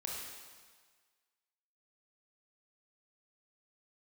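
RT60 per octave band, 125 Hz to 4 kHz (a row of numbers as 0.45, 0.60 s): 1.3, 1.4, 1.5, 1.6, 1.6, 1.5 s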